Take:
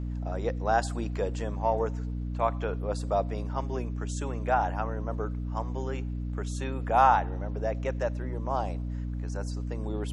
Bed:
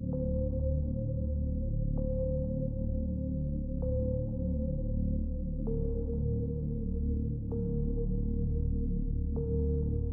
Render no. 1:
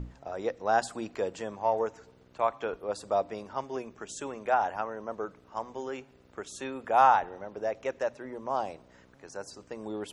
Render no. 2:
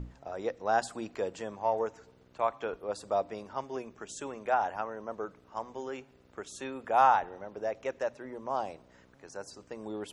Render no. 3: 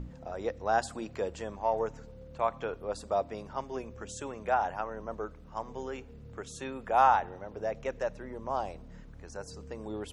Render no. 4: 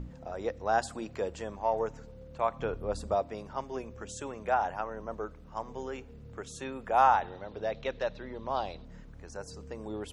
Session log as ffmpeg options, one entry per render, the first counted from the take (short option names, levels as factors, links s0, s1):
-af "bandreject=f=60:t=h:w=6,bandreject=f=120:t=h:w=6,bandreject=f=180:t=h:w=6,bandreject=f=240:t=h:w=6,bandreject=f=300:t=h:w=6"
-af "volume=0.794"
-filter_complex "[1:a]volume=0.133[s0];[0:a][s0]amix=inputs=2:normalize=0"
-filter_complex "[0:a]asettb=1/sr,asplit=3[s0][s1][s2];[s0]atrim=end=2.594[s3];[s1]atrim=start=2.59:end=3.15,asetpts=PTS-STARTPTS,afade=t=in:d=0.004:c=qsin,afade=t=out:st=0.556:d=0.004:c=qsin,lowshelf=f=230:g=10[s4];[s2]atrim=start=3.146[s5];[s3][s4]acrossfade=d=0.004:c1=hsin:c2=qsin[s6];[s6][s5]acrossfade=d=0.004:c1=qsin:c2=hsin,asettb=1/sr,asplit=3[s7][s8][s9];[s7]atrim=end=7.214[s10];[s8]atrim=start=7.21:end=8.85,asetpts=PTS-STARTPTS,afade=t=in:d=0.004:c=qsin,afade=t=out:st=1.636:d=0.004:c=qsin,lowpass=f=3900:t=q:w=5.1[s11];[s9]atrim=start=8.846[s12];[s10][s11]acrossfade=d=0.004:c1=hsin:c2=qsin[s13];[s13][s12]acrossfade=d=0.004:c1=qsin:c2=hsin"